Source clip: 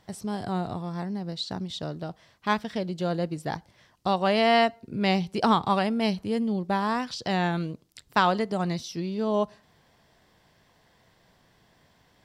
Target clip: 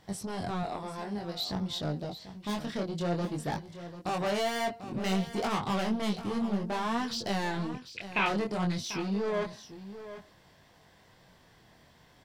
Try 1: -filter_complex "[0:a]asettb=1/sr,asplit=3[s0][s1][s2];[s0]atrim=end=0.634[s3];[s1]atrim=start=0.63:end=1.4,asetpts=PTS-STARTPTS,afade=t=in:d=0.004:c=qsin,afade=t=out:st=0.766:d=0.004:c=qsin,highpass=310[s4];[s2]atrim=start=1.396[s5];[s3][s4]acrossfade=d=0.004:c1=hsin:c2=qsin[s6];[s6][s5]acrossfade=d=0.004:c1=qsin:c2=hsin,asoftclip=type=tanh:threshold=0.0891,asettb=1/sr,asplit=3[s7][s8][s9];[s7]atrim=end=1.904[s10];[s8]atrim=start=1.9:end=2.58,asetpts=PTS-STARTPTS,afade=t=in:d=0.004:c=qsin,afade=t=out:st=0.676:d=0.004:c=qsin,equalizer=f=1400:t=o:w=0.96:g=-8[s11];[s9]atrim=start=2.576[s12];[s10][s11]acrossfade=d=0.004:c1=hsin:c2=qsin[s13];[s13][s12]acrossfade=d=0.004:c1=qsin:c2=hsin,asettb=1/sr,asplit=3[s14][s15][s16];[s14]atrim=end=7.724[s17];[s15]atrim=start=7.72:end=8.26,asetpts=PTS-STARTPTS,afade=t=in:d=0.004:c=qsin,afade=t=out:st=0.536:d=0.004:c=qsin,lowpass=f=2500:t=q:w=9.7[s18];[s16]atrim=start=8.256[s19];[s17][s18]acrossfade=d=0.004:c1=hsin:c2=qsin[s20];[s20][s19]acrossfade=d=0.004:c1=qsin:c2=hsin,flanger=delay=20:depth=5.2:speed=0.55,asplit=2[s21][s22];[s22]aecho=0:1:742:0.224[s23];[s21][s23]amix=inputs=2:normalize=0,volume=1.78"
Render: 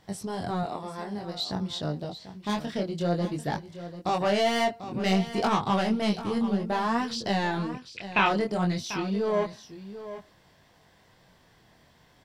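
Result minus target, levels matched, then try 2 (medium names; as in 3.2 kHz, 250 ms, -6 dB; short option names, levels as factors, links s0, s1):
saturation: distortion -6 dB
-filter_complex "[0:a]asettb=1/sr,asplit=3[s0][s1][s2];[s0]atrim=end=0.634[s3];[s1]atrim=start=0.63:end=1.4,asetpts=PTS-STARTPTS,afade=t=in:d=0.004:c=qsin,afade=t=out:st=0.766:d=0.004:c=qsin,highpass=310[s4];[s2]atrim=start=1.396[s5];[s3][s4]acrossfade=d=0.004:c1=hsin:c2=qsin[s6];[s6][s5]acrossfade=d=0.004:c1=qsin:c2=hsin,asoftclip=type=tanh:threshold=0.0335,asettb=1/sr,asplit=3[s7][s8][s9];[s7]atrim=end=1.904[s10];[s8]atrim=start=1.9:end=2.58,asetpts=PTS-STARTPTS,afade=t=in:d=0.004:c=qsin,afade=t=out:st=0.676:d=0.004:c=qsin,equalizer=f=1400:t=o:w=0.96:g=-8[s11];[s9]atrim=start=2.576[s12];[s10][s11]acrossfade=d=0.004:c1=hsin:c2=qsin[s13];[s13][s12]acrossfade=d=0.004:c1=qsin:c2=hsin,asettb=1/sr,asplit=3[s14][s15][s16];[s14]atrim=end=7.724[s17];[s15]atrim=start=7.72:end=8.26,asetpts=PTS-STARTPTS,afade=t=in:d=0.004:c=qsin,afade=t=out:st=0.536:d=0.004:c=qsin,lowpass=f=2500:t=q:w=9.7[s18];[s16]atrim=start=8.256[s19];[s17][s18]acrossfade=d=0.004:c1=hsin:c2=qsin[s20];[s20][s19]acrossfade=d=0.004:c1=qsin:c2=hsin,flanger=delay=20:depth=5.2:speed=0.55,asplit=2[s21][s22];[s22]aecho=0:1:742:0.224[s23];[s21][s23]amix=inputs=2:normalize=0,volume=1.78"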